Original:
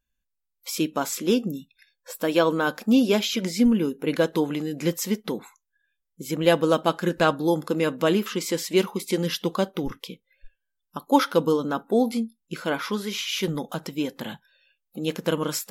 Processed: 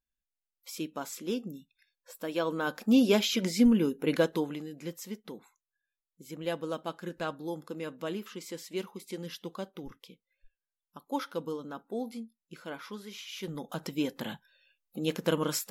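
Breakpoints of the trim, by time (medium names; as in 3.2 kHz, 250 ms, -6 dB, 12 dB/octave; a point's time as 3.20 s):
2.34 s -11.5 dB
3.03 s -3 dB
4.16 s -3 dB
4.81 s -14.5 dB
13.34 s -14.5 dB
13.88 s -3.5 dB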